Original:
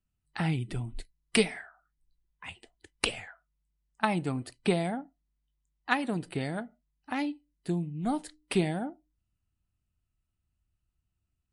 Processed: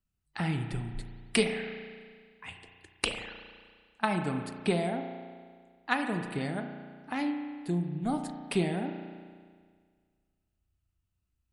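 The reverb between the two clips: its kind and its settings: spring tank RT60 1.8 s, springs 34 ms, chirp 60 ms, DRR 5.5 dB; gain -1.5 dB

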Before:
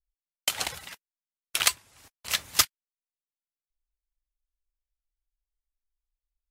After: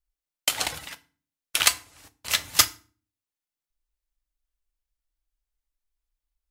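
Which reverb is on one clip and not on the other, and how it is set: FDN reverb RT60 0.38 s, low-frequency decay 1.55×, high-frequency decay 0.85×, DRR 10.5 dB; gain +3 dB

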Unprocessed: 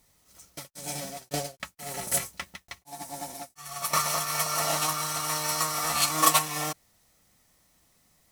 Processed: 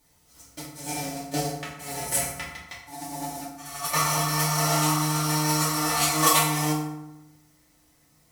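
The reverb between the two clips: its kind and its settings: FDN reverb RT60 0.93 s, low-frequency decay 1.3×, high-frequency decay 0.6×, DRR -5.5 dB; gain -3.5 dB

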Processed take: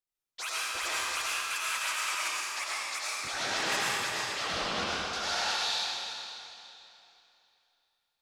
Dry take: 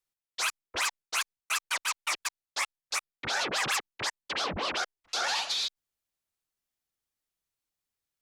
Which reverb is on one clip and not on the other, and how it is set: digital reverb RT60 2.9 s, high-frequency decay 0.95×, pre-delay 55 ms, DRR -8 dB; gain -8 dB

